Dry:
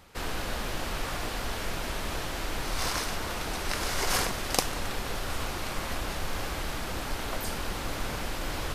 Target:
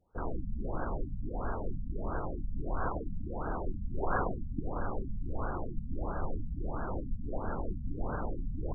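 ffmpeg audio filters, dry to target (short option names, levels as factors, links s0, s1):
-af "afwtdn=0.0112,afftfilt=real='re*lt(b*sr/1024,240*pow(1700/240,0.5+0.5*sin(2*PI*1.5*pts/sr)))':imag='im*lt(b*sr/1024,240*pow(1700/240,0.5+0.5*sin(2*PI*1.5*pts/sr)))':win_size=1024:overlap=0.75"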